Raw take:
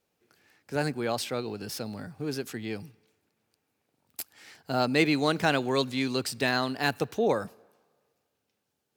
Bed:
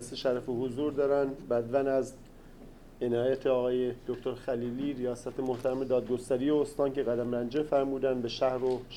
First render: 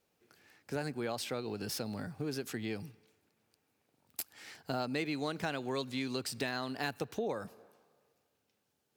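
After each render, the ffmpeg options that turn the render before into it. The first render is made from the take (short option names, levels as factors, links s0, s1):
-af "acompressor=threshold=0.02:ratio=4"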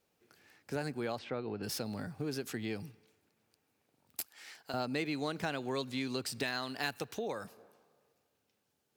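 -filter_complex "[0:a]asplit=3[s0][s1][s2];[s0]afade=t=out:st=1.17:d=0.02[s3];[s1]lowpass=2300,afade=t=in:st=1.17:d=0.02,afade=t=out:st=1.62:d=0.02[s4];[s2]afade=t=in:st=1.62:d=0.02[s5];[s3][s4][s5]amix=inputs=3:normalize=0,asettb=1/sr,asplit=3[s6][s7][s8];[s6]atrim=end=4.264[s9];[s7]atrim=start=4.26:end=4.74,asetpts=PTS-STARTPTS,afade=t=in:d=0.004:c=qsin,afade=t=out:st=0.476:d=0.004:c=qsin,highpass=f=770:p=1[s10];[s8]atrim=start=4.736[s11];[s9][s10]acrossfade=d=0.004:c1=hsin:c2=qsin[s12];[s12][s11]acrossfade=d=0.004:c1=qsin:c2=hsin,asettb=1/sr,asplit=3[s13][s14][s15];[s13]atrim=end=6.434[s16];[s14]atrim=start=6.43:end=7.57,asetpts=PTS-STARTPTS,afade=t=in:d=0.004:c=qsin,afade=t=out:st=1.136:d=0.004:c=qsin,tiltshelf=f=1100:g=-3.5[s17];[s15]atrim=start=7.566[s18];[s16][s17]acrossfade=d=0.004:c1=hsin:c2=qsin[s19];[s19][s18]acrossfade=d=0.004:c1=qsin:c2=hsin"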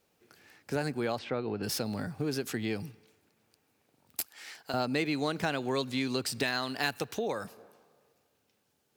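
-af "volume=1.78"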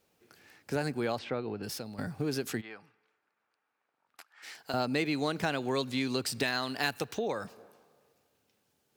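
-filter_complex "[0:a]asplit=3[s0][s1][s2];[s0]afade=t=out:st=2.6:d=0.02[s3];[s1]bandpass=f=1300:t=q:w=1.8,afade=t=in:st=2.6:d=0.02,afade=t=out:st=4.42:d=0.02[s4];[s2]afade=t=in:st=4.42:d=0.02[s5];[s3][s4][s5]amix=inputs=3:normalize=0,asettb=1/sr,asplit=3[s6][s7][s8];[s6]atrim=end=7.134[s9];[s7]atrim=start=7.13:end=7.56,asetpts=PTS-STARTPTS,afade=t=in:d=0.004:c=qsin,afade=t=out:st=0.426:d=0.004:c=qsin,equalizer=f=12000:w=1.4:g=-12.5[s10];[s8]atrim=start=7.556[s11];[s9][s10]acrossfade=d=0.004:c1=hsin:c2=qsin[s12];[s12][s11]acrossfade=d=0.004:c1=qsin:c2=hsin,asplit=2[s13][s14];[s13]atrim=end=1.98,asetpts=PTS-STARTPTS,afade=t=out:st=1.24:d=0.74:silence=0.281838[s15];[s14]atrim=start=1.98,asetpts=PTS-STARTPTS,afade=t=in:d=0.004:c=hsin:silence=0.281838[s16];[s15][s16]concat=n=2:v=0:a=1"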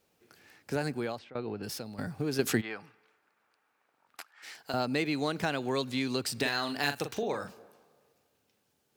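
-filter_complex "[0:a]asettb=1/sr,asplit=3[s0][s1][s2];[s0]atrim=end=6.414[s3];[s1]atrim=start=6.41:end=7.59,asetpts=PTS-STARTPTS,afade=t=in:d=0.004:c=qsin,afade=t=out:st=1.176:d=0.004:c=qsin,asplit=2[s4][s5];[s5]adelay=42,volume=0.422[s6];[s4][s6]amix=inputs=2:normalize=0,atrim=end_sample=52038[s7];[s2]atrim=start=7.586[s8];[s3][s7]acrossfade=d=0.004:c1=hsin:c2=qsin[s9];[s9][s8]acrossfade=d=0.004:c1=qsin:c2=hsin,asplit=4[s10][s11][s12][s13];[s10]atrim=end=1.35,asetpts=PTS-STARTPTS,afade=t=out:st=0.94:d=0.41:silence=0.0944061[s14];[s11]atrim=start=1.35:end=2.392,asetpts=PTS-STARTPTS,afade=t=in:d=0.004:c=hsin:silence=0.0944061[s15];[s12]atrim=start=2.388:end=4.312,asetpts=PTS-STARTPTS,volume=2.24[s16];[s13]atrim=start=4.308[s17];[s14][s15]concat=n=2:v=0:a=1[s18];[s18][s16]acrossfade=d=0.004:c1=hsin:c2=hsin[s19];[s19][s17]acrossfade=d=0.004:c1=hsin:c2=hsin"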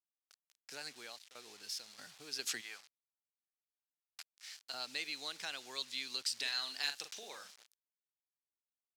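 -af "acrusher=bits=7:mix=0:aa=0.000001,bandpass=f=5000:t=q:w=1.1:csg=0"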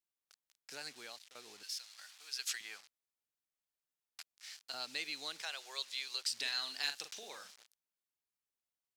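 -filter_complex "[0:a]asettb=1/sr,asplit=3[s0][s1][s2];[s0]atrim=end=1.634[s3];[s1]atrim=start=1.63:end=2.61,asetpts=PTS-STARTPTS,afade=t=in:d=0.004:c=qsin,afade=t=out:st=0.976:d=0.004:c=qsin,highpass=1200[s4];[s2]atrim=start=2.606[s5];[s3][s4]acrossfade=d=0.004:c1=hsin:c2=qsin[s6];[s6][s5]acrossfade=d=0.004:c1=qsin:c2=hsin,asettb=1/sr,asplit=3[s7][s8][s9];[s7]atrim=end=5.424[s10];[s8]atrim=start=5.42:end=6.23,asetpts=PTS-STARTPTS,afade=t=in:d=0.004:c=qsin,afade=t=out:st=0.806:d=0.004:c=qsin,highpass=f=440:w=0.5412,highpass=f=440:w=1.3066[s11];[s9]atrim=start=6.226[s12];[s10][s11]acrossfade=d=0.004:c1=hsin:c2=qsin[s13];[s13][s12]acrossfade=d=0.004:c1=qsin:c2=hsin"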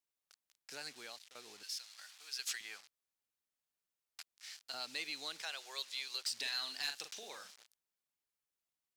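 -af "asoftclip=type=tanh:threshold=0.0376"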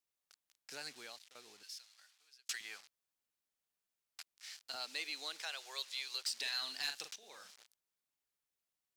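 -filter_complex "[0:a]asettb=1/sr,asplit=3[s0][s1][s2];[s0]atrim=end=4.764[s3];[s1]atrim=start=4.76:end=6.62,asetpts=PTS-STARTPTS,afade=t=in:d=0.004:c=qsin,afade=t=out:st=1.856:d=0.004:c=qsin,highpass=320[s4];[s2]atrim=start=6.616[s5];[s3][s4]acrossfade=d=0.004:c1=hsin:c2=qsin[s6];[s6][s5]acrossfade=d=0.004:c1=qsin:c2=hsin,asplit=3[s7][s8][s9];[s7]atrim=end=2.49,asetpts=PTS-STARTPTS,afade=t=out:st=0.88:d=1.61[s10];[s8]atrim=start=2.49:end=7.16,asetpts=PTS-STARTPTS,afade=t=in:d=0.004:c=hsin,afade=t=out:st=4.666:d=0.004:c=hsin:silence=0.16788[s11];[s9]atrim=start=7.16,asetpts=PTS-STARTPTS,afade=t=in:d=0.43:silence=0.16788[s12];[s10][s11][s12]concat=n=3:v=0:a=1"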